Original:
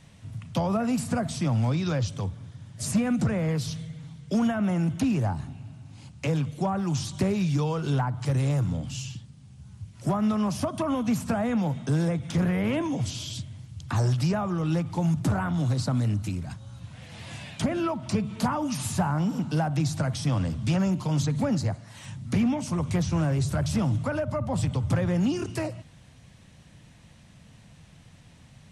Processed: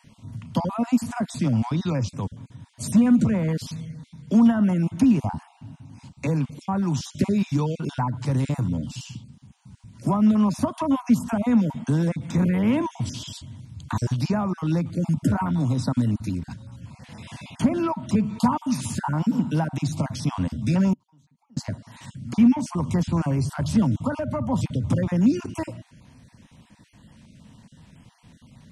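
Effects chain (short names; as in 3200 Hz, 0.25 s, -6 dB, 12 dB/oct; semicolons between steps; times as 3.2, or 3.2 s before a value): random spectral dropouts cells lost 24%; 20.93–21.57 flipped gate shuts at -30 dBFS, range -35 dB; small resonant body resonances 240/950 Hz, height 9 dB, ringing for 30 ms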